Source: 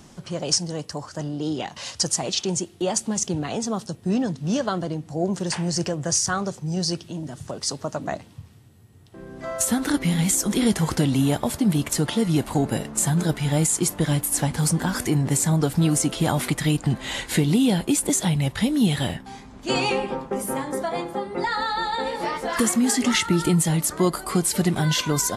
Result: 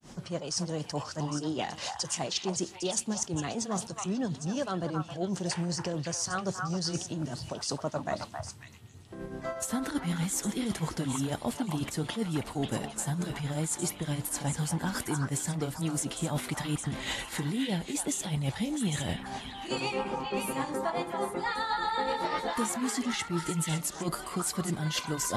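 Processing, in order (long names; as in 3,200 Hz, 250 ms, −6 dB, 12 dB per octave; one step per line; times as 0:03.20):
reversed playback
downward compressor 6 to 1, threshold −29 dBFS, peak gain reduction 13.5 dB
reversed playback
granular cloud 214 ms, grains 8 per second, spray 18 ms, pitch spread up and down by 0 semitones
echo through a band-pass that steps 269 ms, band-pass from 1,100 Hz, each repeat 1.4 octaves, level −0.5 dB
level +1.5 dB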